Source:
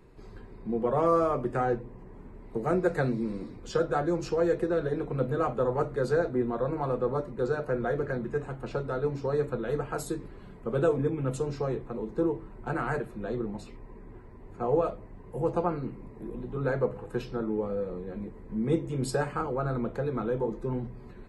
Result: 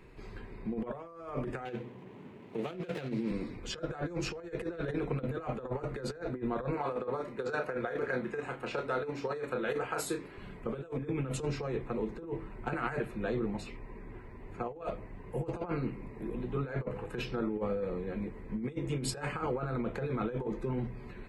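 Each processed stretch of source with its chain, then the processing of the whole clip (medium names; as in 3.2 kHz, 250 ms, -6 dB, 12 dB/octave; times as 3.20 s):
1.65–3.31 s: median filter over 25 samples + high-pass 120 Hz 24 dB/octave + dynamic bell 3.8 kHz, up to +4 dB, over -54 dBFS, Q 0.77
6.74–10.38 s: high-pass 350 Hz 6 dB/octave + doubling 32 ms -7.5 dB
whole clip: peaking EQ 2.4 kHz +9 dB 1.1 oct; compressor with a negative ratio -31 dBFS, ratio -0.5; trim -3 dB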